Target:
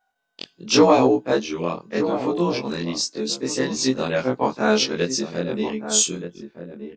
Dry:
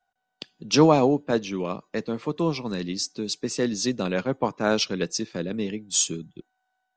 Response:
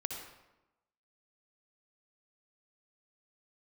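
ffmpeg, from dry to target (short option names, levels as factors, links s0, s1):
-filter_complex "[0:a]afftfilt=real='re':imag='-im':win_size=2048:overlap=0.75,asplit=2[s0][s1];[s1]adelay=1224,volume=0.316,highshelf=f=4000:g=-27.6[s2];[s0][s2]amix=inputs=2:normalize=0,acrossover=split=200[s3][s4];[s4]acontrast=87[s5];[s3][s5]amix=inputs=2:normalize=0,volume=1.19"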